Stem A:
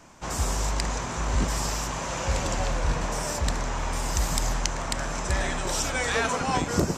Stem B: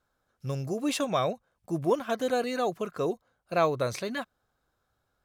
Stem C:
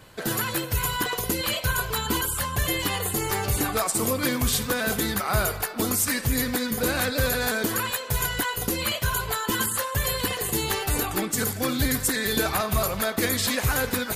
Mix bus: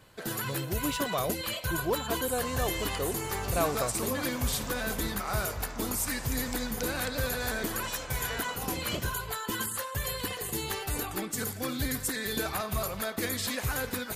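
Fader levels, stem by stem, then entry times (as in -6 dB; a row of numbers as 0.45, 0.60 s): -13.0, -4.5, -7.5 dB; 2.15, 0.00, 0.00 s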